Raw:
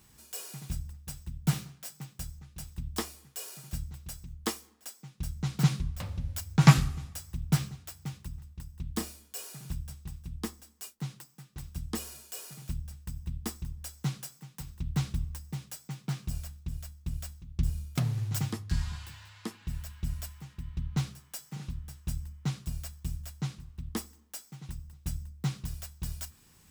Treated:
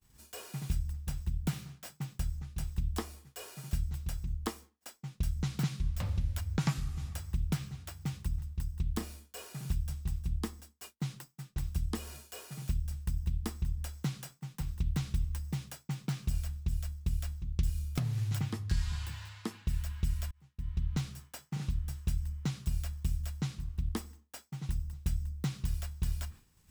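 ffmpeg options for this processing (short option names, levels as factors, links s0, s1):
-filter_complex "[0:a]asplit=2[s0][s1];[s0]atrim=end=20.31,asetpts=PTS-STARTPTS,afade=t=out:st=20.306:d=0.004:c=hsin[s2];[s1]atrim=start=20.31,asetpts=PTS-STARTPTS,afade=t=in:d=0.71[s3];[s2][s3]concat=n=2:v=0:a=1,acrossover=split=1500|3500[s4][s5][s6];[s4]acompressor=threshold=0.0141:ratio=4[s7];[s5]acompressor=threshold=0.00224:ratio=4[s8];[s6]acompressor=threshold=0.00282:ratio=4[s9];[s7][s8][s9]amix=inputs=3:normalize=0,lowshelf=f=79:g=10.5,agate=range=0.0224:threshold=0.00398:ratio=3:detection=peak,volume=1.41"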